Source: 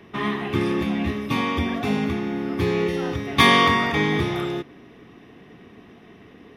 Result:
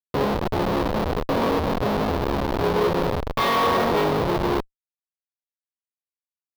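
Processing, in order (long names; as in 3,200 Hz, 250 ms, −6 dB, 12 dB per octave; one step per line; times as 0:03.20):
granular cloud 188 ms, grains 15 per second, spray 21 ms
comparator with hysteresis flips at −25.5 dBFS
octave-band graphic EQ 500/1,000/4,000/8,000 Hz +10/+8/+6/−11 dB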